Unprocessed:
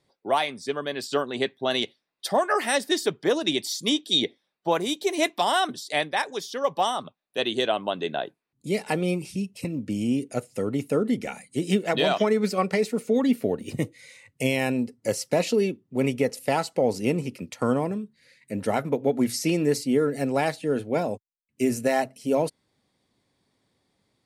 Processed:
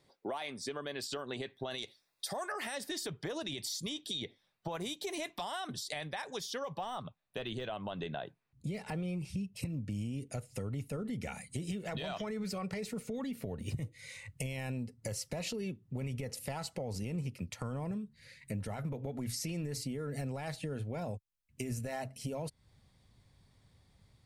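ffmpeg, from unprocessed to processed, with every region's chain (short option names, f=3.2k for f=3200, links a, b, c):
-filter_complex "[0:a]asettb=1/sr,asplit=3[a][b][c];[a]atrim=end=1.784[d];[b]atrim=start=1.78:end=2.52,asetpts=PTS-STARTPTS,afade=t=in:d=0.004:c=qsin,afade=t=out:st=0.736:d=0.004:c=qsin,bass=f=250:g=-4,treble=f=4k:g=9,bandreject=f=3k:w=8.2[e];[c]atrim=start=2.516[f];[d][e]acrossfade=d=0.004:c1=hsin:c2=qsin[g];[g][f]acrossfade=d=0.004:c1=qsin:c2=hsin,asettb=1/sr,asplit=3[h][i][j];[h]atrim=end=6.754[k];[i]atrim=start=6.75:end=9.56,asetpts=PTS-STARTPTS,afade=t=in:d=0.004:c=qsin,afade=t=out:st=2.806:d=0.004:c=qsin,deesser=0.8,highshelf=f=5k:g=-8[l];[j]atrim=start=9.556[m];[k][l]acrossfade=d=0.004:c1=hsin:c2=qsin[n];[n][m]acrossfade=d=0.004:c1=qsin:c2=hsin,alimiter=limit=-21.5dB:level=0:latency=1:release=55,asubboost=boost=10.5:cutoff=92,acompressor=threshold=-40dB:ratio=3,volume=1.5dB"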